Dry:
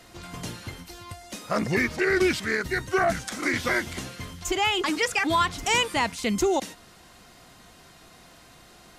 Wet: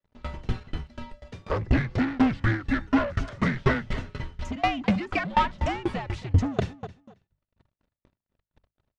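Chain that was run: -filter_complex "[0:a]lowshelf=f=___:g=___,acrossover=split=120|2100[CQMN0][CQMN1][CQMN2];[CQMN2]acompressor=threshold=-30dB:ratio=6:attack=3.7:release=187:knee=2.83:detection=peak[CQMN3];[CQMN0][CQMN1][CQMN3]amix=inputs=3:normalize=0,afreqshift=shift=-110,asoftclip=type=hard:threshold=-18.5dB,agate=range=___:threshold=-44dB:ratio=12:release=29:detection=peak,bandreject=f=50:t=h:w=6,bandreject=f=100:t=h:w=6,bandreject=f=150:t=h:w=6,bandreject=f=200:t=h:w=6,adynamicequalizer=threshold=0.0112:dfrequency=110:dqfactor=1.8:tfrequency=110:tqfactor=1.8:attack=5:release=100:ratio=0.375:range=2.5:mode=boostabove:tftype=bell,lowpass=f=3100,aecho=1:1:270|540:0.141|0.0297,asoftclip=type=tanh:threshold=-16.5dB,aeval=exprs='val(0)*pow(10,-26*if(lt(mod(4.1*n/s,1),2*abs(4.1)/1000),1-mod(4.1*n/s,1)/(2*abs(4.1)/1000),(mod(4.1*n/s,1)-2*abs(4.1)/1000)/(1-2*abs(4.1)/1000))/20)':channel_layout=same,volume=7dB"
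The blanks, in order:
490, 9, -46dB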